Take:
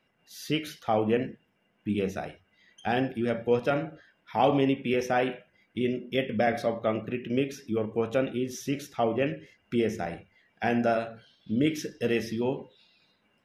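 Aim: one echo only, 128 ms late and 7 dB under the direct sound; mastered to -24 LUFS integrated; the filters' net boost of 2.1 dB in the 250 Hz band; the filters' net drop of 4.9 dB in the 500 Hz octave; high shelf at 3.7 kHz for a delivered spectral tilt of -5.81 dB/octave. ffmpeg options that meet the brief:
-af "equalizer=f=250:t=o:g=4.5,equalizer=f=500:t=o:g=-7.5,highshelf=f=3700:g=-7,aecho=1:1:128:0.447,volume=1.88"

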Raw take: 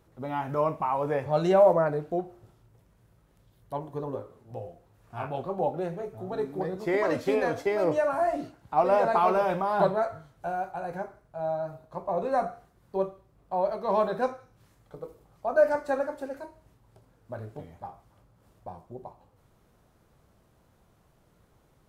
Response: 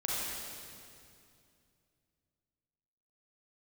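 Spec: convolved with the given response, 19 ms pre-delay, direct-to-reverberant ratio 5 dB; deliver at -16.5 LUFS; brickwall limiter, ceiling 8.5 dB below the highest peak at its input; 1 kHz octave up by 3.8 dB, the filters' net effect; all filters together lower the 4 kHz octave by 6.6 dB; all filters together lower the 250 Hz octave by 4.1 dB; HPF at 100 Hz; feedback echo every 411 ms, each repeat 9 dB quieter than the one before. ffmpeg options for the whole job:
-filter_complex "[0:a]highpass=100,equalizer=f=250:t=o:g=-7,equalizer=f=1000:t=o:g=6,equalizer=f=4000:t=o:g=-9,alimiter=limit=0.15:level=0:latency=1,aecho=1:1:411|822|1233|1644:0.355|0.124|0.0435|0.0152,asplit=2[s0][s1];[1:a]atrim=start_sample=2205,adelay=19[s2];[s1][s2]afir=irnorm=-1:irlink=0,volume=0.266[s3];[s0][s3]amix=inputs=2:normalize=0,volume=3.55"

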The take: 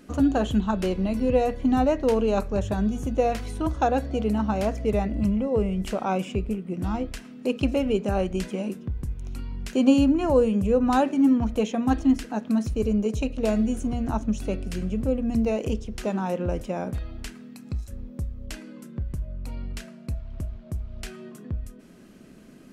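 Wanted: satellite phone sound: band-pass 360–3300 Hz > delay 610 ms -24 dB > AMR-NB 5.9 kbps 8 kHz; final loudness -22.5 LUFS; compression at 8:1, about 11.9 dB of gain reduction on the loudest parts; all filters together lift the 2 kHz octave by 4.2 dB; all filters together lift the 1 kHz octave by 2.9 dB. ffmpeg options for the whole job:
-af "equalizer=f=1000:t=o:g=3.5,equalizer=f=2000:t=o:g=5.5,acompressor=threshold=0.0501:ratio=8,highpass=360,lowpass=3300,aecho=1:1:610:0.0631,volume=4.73" -ar 8000 -c:a libopencore_amrnb -b:a 5900

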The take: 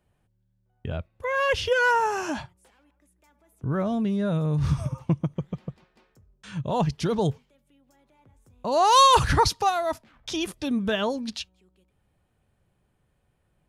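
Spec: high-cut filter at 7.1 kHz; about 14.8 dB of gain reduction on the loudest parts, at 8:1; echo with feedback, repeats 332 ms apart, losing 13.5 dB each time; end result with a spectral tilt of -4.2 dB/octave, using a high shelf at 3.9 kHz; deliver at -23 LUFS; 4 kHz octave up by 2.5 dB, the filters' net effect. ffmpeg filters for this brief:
-af "lowpass=7100,highshelf=f=3900:g=-6.5,equalizer=f=4000:t=o:g=7,acompressor=threshold=0.0398:ratio=8,aecho=1:1:332|664:0.211|0.0444,volume=3.16"

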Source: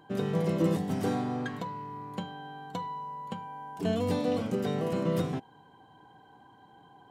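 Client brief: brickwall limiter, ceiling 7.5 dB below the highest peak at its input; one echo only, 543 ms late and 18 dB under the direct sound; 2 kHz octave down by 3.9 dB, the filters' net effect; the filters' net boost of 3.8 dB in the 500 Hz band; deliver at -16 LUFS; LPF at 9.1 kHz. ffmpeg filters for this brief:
-af "lowpass=9100,equalizer=f=500:t=o:g=4.5,equalizer=f=2000:t=o:g=-5.5,alimiter=limit=0.0794:level=0:latency=1,aecho=1:1:543:0.126,volume=7.08"

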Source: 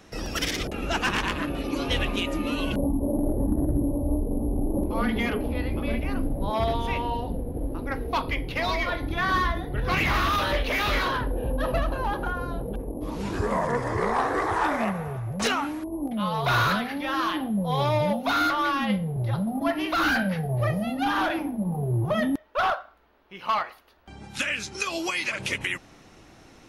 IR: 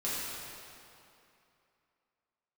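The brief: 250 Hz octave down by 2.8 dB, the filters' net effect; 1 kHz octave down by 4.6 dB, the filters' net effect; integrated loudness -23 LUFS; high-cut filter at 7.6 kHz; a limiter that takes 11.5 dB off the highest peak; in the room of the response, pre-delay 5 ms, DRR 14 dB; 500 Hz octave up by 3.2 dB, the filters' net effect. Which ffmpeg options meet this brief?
-filter_complex "[0:a]lowpass=7600,equalizer=f=250:t=o:g=-5.5,equalizer=f=500:t=o:g=8,equalizer=f=1000:t=o:g=-8.5,alimiter=limit=0.0668:level=0:latency=1,asplit=2[s0][s1];[1:a]atrim=start_sample=2205,adelay=5[s2];[s1][s2]afir=irnorm=-1:irlink=0,volume=0.0944[s3];[s0][s3]amix=inputs=2:normalize=0,volume=2.82"

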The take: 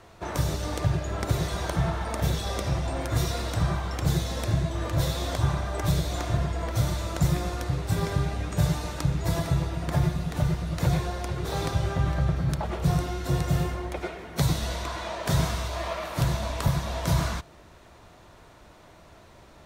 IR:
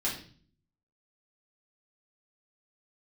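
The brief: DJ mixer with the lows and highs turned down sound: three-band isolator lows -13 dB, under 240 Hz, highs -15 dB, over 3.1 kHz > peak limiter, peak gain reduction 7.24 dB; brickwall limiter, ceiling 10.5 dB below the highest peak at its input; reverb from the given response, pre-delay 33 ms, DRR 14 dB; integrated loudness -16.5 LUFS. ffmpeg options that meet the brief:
-filter_complex "[0:a]alimiter=limit=0.0668:level=0:latency=1,asplit=2[s0][s1];[1:a]atrim=start_sample=2205,adelay=33[s2];[s1][s2]afir=irnorm=-1:irlink=0,volume=0.1[s3];[s0][s3]amix=inputs=2:normalize=0,acrossover=split=240 3100:gain=0.224 1 0.178[s4][s5][s6];[s4][s5][s6]amix=inputs=3:normalize=0,volume=15,alimiter=limit=0.447:level=0:latency=1"

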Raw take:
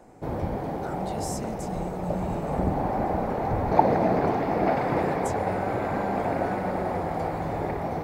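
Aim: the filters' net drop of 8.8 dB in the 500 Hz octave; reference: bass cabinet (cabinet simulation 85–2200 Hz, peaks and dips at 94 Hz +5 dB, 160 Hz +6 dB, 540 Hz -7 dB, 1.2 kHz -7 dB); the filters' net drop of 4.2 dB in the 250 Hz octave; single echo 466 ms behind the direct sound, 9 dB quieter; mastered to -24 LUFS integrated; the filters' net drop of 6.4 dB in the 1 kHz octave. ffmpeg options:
-af "highpass=f=85:w=0.5412,highpass=f=85:w=1.3066,equalizer=f=94:t=q:w=4:g=5,equalizer=f=160:t=q:w=4:g=6,equalizer=f=540:t=q:w=4:g=-7,equalizer=f=1200:t=q:w=4:g=-7,lowpass=f=2200:w=0.5412,lowpass=f=2200:w=1.3066,equalizer=f=250:t=o:g=-7.5,equalizer=f=500:t=o:g=-4.5,equalizer=f=1000:t=o:g=-4,aecho=1:1:466:0.355,volume=2.37"

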